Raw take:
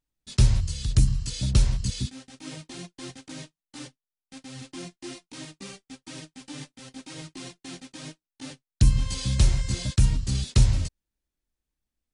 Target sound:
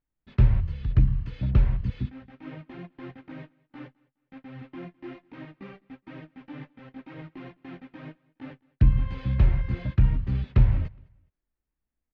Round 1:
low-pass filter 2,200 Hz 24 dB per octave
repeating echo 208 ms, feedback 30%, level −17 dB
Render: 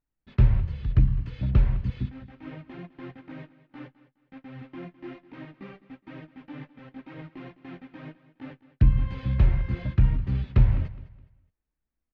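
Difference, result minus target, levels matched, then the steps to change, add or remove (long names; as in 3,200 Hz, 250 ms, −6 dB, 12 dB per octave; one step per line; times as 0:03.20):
echo-to-direct +9 dB
change: repeating echo 208 ms, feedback 30%, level −26 dB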